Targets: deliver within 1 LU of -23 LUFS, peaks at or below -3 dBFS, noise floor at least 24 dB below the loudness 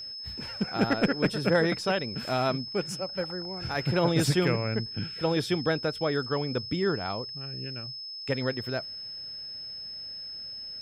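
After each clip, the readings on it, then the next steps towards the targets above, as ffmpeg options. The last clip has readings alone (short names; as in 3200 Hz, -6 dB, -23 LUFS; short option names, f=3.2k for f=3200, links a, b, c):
steady tone 5200 Hz; tone level -37 dBFS; loudness -29.5 LUFS; peak -14.0 dBFS; loudness target -23.0 LUFS
-> -af "bandreject=f=5.2k:w=30"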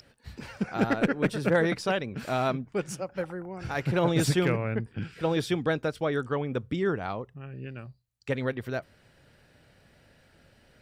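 steady tone none; loudness -29.0 LUFS; peak -14.0 dBFS; loudness target -23.0 LUFS
-> -af "volume=6dB"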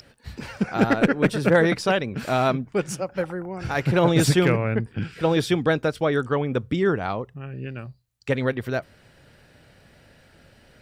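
loudness -23.0 LUFS; peak -8.0 dBFS; noise floor -56 dBFS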